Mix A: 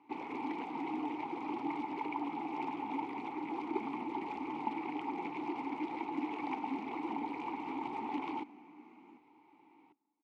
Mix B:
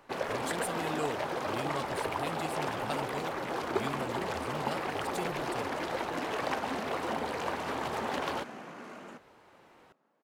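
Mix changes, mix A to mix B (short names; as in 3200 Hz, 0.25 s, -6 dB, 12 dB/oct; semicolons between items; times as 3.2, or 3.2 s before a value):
speech: remove air absorption 390 m; first sound -7.0 dB; master: remove vowel filter u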